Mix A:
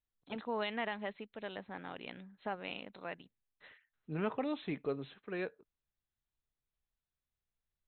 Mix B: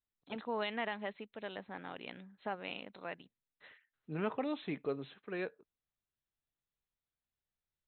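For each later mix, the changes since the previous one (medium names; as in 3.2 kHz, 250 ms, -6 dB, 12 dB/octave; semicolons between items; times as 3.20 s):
master: add bass shelf 70 Hz -9.5 dB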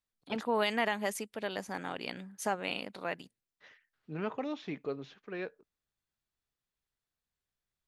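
first voice +7.0 dB; master: remove brick-wall FIR low-pass 4.2 kHz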